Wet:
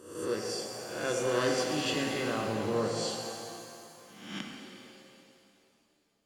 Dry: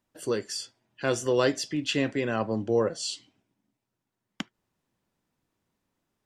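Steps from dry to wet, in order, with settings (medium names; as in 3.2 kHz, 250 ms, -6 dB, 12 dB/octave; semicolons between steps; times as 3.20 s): reverse spectral sustain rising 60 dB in 0.76 s; pitch-shifted reverb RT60 2.6 s, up +7 st, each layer -8 dB, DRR 1 dB; trim -8.5 dB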